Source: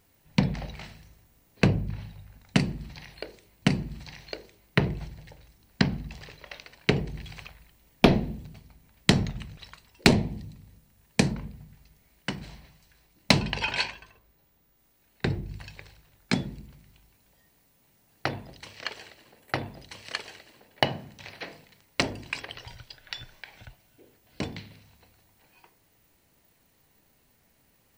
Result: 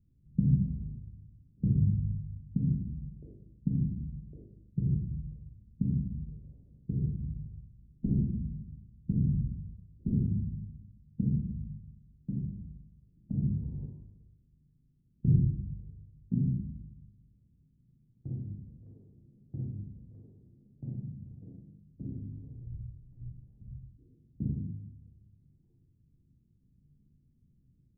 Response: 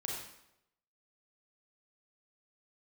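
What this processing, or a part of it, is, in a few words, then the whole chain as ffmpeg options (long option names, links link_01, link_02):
club heard from the street: -filter_complex "[0:a]asettb=1/sr,asplit=3[link_01][link_02][link_03];[link_01]atrim=end=12.414[link_04];[link_02]atrim=start=12.41:end=13.35,asetpts=PTS-STARTPTS,afade=type=in:duration=0.004:curve=qsin,afade=type=out:start_time=0.936:duration=0.004:curve=qsin,equalizer=frequency=660:width_type=o:width=0.77:gain=5.5[link_05];[link_03]atrim=start=13.346[link_06];[link_04][link_05]acrossfade=duration=0.004:curve1=hsin:curve2=qsin[link_07];[link_07][link_06]acrossfade=duration=0.004:curve1=qsin:curve2=hsin,alimiter=limit=-13dB:level=0:latency=1:release=358,lowpass=frequency=220:width=0.5412,lowpass=frequency=220:width=1.3066[link_08];[1:a]atrim=start_sample=2205[link_09];[link_08][link_09]afir=irnorm=-1:irlink=0,volume=4dB"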